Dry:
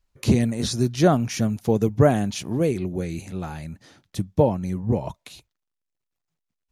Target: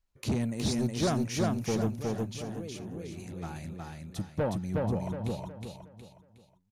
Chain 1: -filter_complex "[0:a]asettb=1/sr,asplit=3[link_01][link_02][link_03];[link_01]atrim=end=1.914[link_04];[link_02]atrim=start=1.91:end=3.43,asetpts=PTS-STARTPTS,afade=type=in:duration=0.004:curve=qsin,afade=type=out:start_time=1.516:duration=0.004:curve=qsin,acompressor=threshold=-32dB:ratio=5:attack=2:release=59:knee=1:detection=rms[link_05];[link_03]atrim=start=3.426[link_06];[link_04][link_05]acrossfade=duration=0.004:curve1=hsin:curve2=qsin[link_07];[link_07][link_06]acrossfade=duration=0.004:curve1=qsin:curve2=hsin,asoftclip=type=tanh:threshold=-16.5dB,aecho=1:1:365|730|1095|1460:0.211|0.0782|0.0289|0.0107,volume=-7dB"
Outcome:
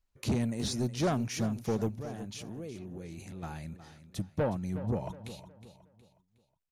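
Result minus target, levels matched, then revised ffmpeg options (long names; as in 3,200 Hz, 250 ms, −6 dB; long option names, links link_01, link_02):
echo-to-direct −11.5 dB
-filter_complex "[0:a]asettb=1/sr,asplit=3[link_01][link_02][link_03];[link_01]atrim=end=1.914[link_04];[link_02]atrim=start=1.91:end=3.43,asetpts=PTS-STARTPTS,afade=type=in:duration=0.004:curve=qsin,afade=type=out:start_time=1.516:duration=0.004:curve=qsin,acompressor=threshold=-32dB:ratio=5:attack=2:release=59:knee=1:detection=rms[link_05];[link_03]atrim=start=3.426[link_06];[link_04][link_05]acrossfade=duration=0.004:curve1=hsin:curve2=qsin[link_07];[link_07][link_06]acrossfade=duration=0.004:curve1=qsin:curve2=hsin,asoftclip=type=tanh:threshold=-16.5dB,aecho=1:1:365|730|1095|1460|1825:0.794|0.294|0.109|0.0402|0.0149,volume=-7dB"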